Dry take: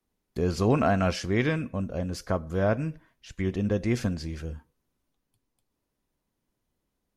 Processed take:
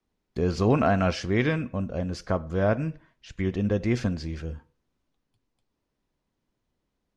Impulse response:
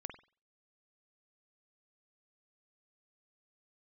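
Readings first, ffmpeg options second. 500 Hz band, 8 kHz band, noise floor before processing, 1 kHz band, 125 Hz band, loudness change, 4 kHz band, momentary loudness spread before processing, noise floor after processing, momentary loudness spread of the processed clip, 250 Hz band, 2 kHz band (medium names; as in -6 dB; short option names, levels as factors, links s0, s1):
+1.0 dB, -3.0 dB, -81 dBFS, +1.5 dB, +1.5 dB, +1.0 dB, +0.5 dB, 15 LU, -80 dBFS, 15 LU, +1.0 dB, +1.0 dB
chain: -filter_complex "[0:a]lowpass=5900,asplit=2[s0][s1];[1:a]atrim=start_sample=2205,asetrate=41454,aresample=44100[s2];[s1][s2]afir=irnorm=-1:irlink=0,volume=0.251[s3];[s0][s3]amix=inputs=2:normalize=0"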